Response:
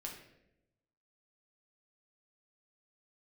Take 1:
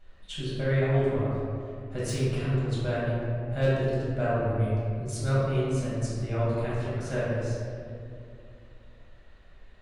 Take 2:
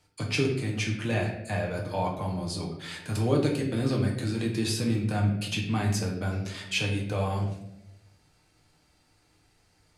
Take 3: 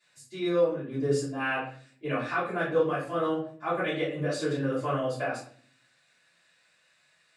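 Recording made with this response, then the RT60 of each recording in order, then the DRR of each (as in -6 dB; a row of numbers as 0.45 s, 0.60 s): 2; 2.5 s, 0.85 s, 0.50 s; -9.5 dB, -1.0 dB, -14.5 dB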